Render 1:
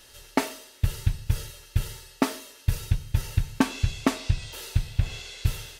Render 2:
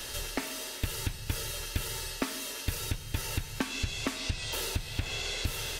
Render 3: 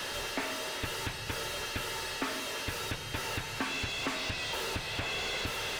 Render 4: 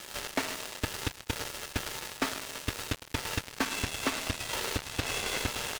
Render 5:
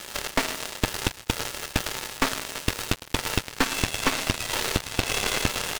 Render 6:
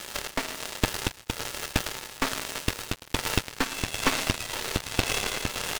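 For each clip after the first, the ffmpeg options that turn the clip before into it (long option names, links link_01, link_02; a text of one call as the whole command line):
ffmpeg -i in.wav -filter_complex "[0:a]asplit=2[link_01][link_02];[link_02]acompressor=threshold=-30dB:ratio=6,volume=2.5dB[link_03];[link_01][link_03]amix=inputs=2:normalize=0,alimiter=limit=-13dB:level=0:latency=1:release=369,acrossover=split=250|1200[link_04][link_05][link_06];[link_04]acompressor=threshold=-37dB:ratio=4[link_07];[link_05]acompressor=threshold=-45dB:ratio=4[link_08];[link_06]acompressor=threshold=-39dB:ratio=4[link_09];[link_07][link_08][link_09]amix=inputs=3:normalize=0,volume=5dB" out.wav
ffmpeg -i in.wav -filter_complex "[0:a]asplit=2[link_01][link_02];[link_02]highpass=frequency=720:poles=1,volume=28dB,asoftclip=type=tanh:threshold=-15dB[link_03];[link_01][link_03]amix=inputs=2:normalize=0,lowpass=frequency=1500:poles=1,volume=-6dB,volume=-6dB" out.wav
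ffmpeg -i in.wav -af "aeval=exprs='sgn(val(0))*max(abs(val(0))-0.00119,0)':channel_layout=same,aecho=1:1:107:0.299,acrusher=bits=4:mix=0:aa=0.5,volume=4dB" out.wav
ffmpeg -i in.wav -af "aeval=exprs='0.106*(cos(1*acos(clip(val(0)/0.106,-1,1)))-cos(1*PI/2))+0.0473*(cos(2*acos(clip(val(0)/0.106,-1,1)))-cos(2*PI/2))':channel_layout=same,volume=5dB" out.wav
ffmpeg -i in.wav -af "tremolo=f=1.2:d=0.48" out.wav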